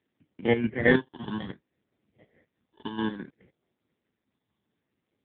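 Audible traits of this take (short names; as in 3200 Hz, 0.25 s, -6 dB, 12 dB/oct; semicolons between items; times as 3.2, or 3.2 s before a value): chopped level 4.7 Hz, depth 65%, duty 50%; aliases and images of a low sample rate 1300 Hz, jitter 0%; phasing stages 6, 0.61 Hz, lowest notch 570–1200 Hz; AMR-NB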